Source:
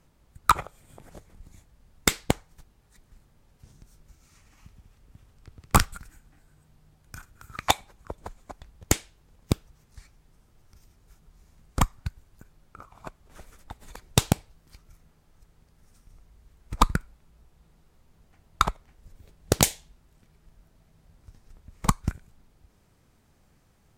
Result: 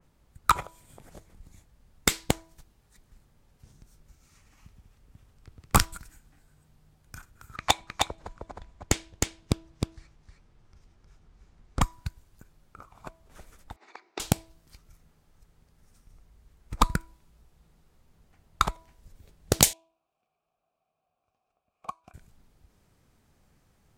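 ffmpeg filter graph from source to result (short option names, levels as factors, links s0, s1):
-filter_complex "[0:a]asettb=1/sr,asplit=3[s0][s1][s2];[s0]atrim=end=7.564[s3];[s1]atrim=start=7.56:end=11.82,asetpts=PTS-STARTPTS,afade=t=in:d=0.004:c=qsin,afade=t=out:st=4.256:d=0.004:c=qsin,adynamicsmooth=sensitivity=2:basefreq=5900,aecho=1:1:311:0.668,atrim=end_sample=187866[s4];[s2]atrim=start=11.816[s5];[s3][s4]acrossfade=d=0.004:c1=hsin:c2=qsin[s6];[s6][s5]acrossfade=d=0.004:c1=qsin:c2=hsin,asettb=1/sr,asplit=3[s7][s8][s9];[s7]atrim=end=13.764[s10];[s8]atrim=start=13.76:end=14.2,asetpts=PTS-STARTPTS,afade=t=in:d=0.004:c=qsin,afade=t=out:st=0.436:d=0.004:c=qsin,acompressor=threshold=0.0562:ratio=6:attack=3.2:release=140:knee=1:detection=peak,highpass=f=340:w=0.5412,highpass=f=340:w=1.3066,equalizer=f=340:t=q:w=4:g=7,equalizer=f=530:t=q:w=4:g=-8,equalizer=f=760:t=q:w=4:g=6,equalizer=f=1200:t=q:w=4:g=4,equalizer=f=2200:t=q:w=4:g=7,equalizer=f=3200:t=q:w=4:g=-8,lowpass=f=5000:w=0.5412,lowpass=f=5000:w=1.3066[s11];[s9]atrim=start=14.196[s12];[s10][s11]acrossfade=d=0.004:c1=hsin:c2=qsin[s13];[s13][s12]acrossfade=d=0.004:c1=qsin:c2=hsin,asettb=1/sr,asplit=3[s14][s15][s16];[s14]atrim=end=19.734[s17];[s15]atrim=start=19.73:end=22.14,asetpts=PTS-STARTPTS,afade=t=in:d=0.004:c=qsin,afade=t=out:st=2.406:d=0.004:c=qsin,asplit=3[s18][s19][s20];[s18]bandpass=f=730:t=q:w=8,volume=1[s21];[s19]bandpass=f=1090:t=q:w=8,volume=0.501[s22];[s20]bandpass=f=2440:t=q:w=8,volume=0.355[s23];[s21][s22][s23]amix=inputs=3:normalize=0,equalizer=f=15000:t=o:w=1.1:g=12[s24];[s16]atrim=start=22.136[s25];[s17][s24]acrossfade=d=0.004:c1=hsin:c2=qsin[s26];[s26][s25]acrossfade=d=0.004:c1=qsin:c2=hsin,bandreject=f=327.5:t=h:w=4,bandreject=f=655:t=h:w=4,bandreject=f=982.5:t=h:w=4,adynamicequalizer=threshold=0.00794:dfrequency=2800:dqfactor=0.7:tfrequency=2800:tqfactor=0.7:attack=5:release=100:ratio=0.375:range=2.5:mode=boostabove:tftype=highshelf,volume=0.794"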